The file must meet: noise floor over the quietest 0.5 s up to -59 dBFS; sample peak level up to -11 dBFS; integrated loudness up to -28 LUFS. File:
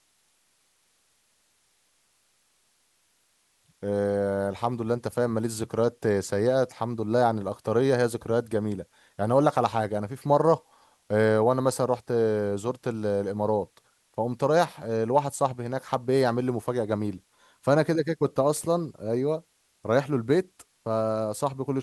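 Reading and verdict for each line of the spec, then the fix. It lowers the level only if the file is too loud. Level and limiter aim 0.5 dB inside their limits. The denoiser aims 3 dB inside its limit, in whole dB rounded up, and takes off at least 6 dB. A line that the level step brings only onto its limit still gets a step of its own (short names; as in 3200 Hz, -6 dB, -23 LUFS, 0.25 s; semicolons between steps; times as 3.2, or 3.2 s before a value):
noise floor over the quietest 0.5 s -68 dBFS: OK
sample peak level -6.5 dBFS: fail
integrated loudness -26.5 LUFS: fail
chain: gain -2 dB; limiter -11.5 dBFS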